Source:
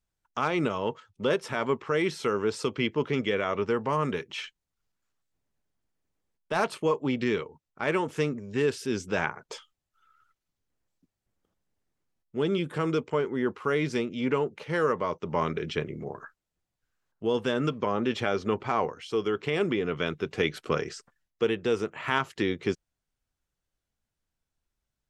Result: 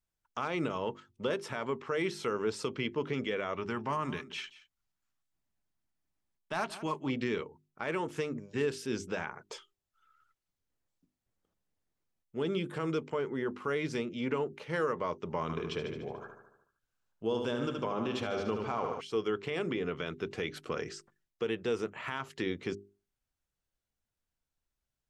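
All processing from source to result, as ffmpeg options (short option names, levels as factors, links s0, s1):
-filter_complex "[0:a]asettb=1/sr,asplit=3[s0][s1][s2];[s0]atrim=end=3.544[s3];[s1]atrim=start=3.54:end=7.1,asetpts=PTS-STARTPTS,afade=t=in:d=0.004:c=qsin,afade=t=out:st=3.556:d=0.004:c=qsin,equalizer=f=480:t=o:w=0.29:g=-13,aecho=1:1:177:0.133,atrim=end_sample=156996[s4];[s2]atrim=start=7.096[s5];[s3][s4]acrossfade=d=0.004:c1=hsin:c2=qsin[s6];[s6][s5]acrossfade=d=0.004:c1=qsin:c2=hsin,asettb=1/sr,asplit=3[s7][s8][s9];[s7]atrim=end=15.424[s10];[s8]atrim=start=15.42:end=19.01,asetpts=PTS-STARTPTS,afade=t=in:d=0.004:c=qsin,afade=t=out:st=3.586:d=0.004:c=qsin,equalizer=f=1900:w=4:g=-6,aecho=1:1:74|148|222|296|370|444|518:0.447|0.259|0.15|0.0872|0.0505|0.0293|0.017,atrim=end_sample=158319[s11];[s9]atrim=start=19.006[s12];[s10][s11]acrossfade=d=0.004:c1=hsin:c2=qsin[s13];[s13][s12]acrossfade=d=0.004:c1=qsin:c2=hsin,alimiter=limit=0.126:level=0:latency=1:release=75,bandreject=f=50:t=h:w=6,bandreject=f=100:t=h:w=6,bandreject=f=150:t=h:w=6,bandreject=f=200:t=h:w=6,bandreject=f=250:t=h:w=6,bandreject=f=300:t=h:w=6,bandreject=f=350:t=h:w=6,bandreject=f=400:t=h:w=6,volume=0.631"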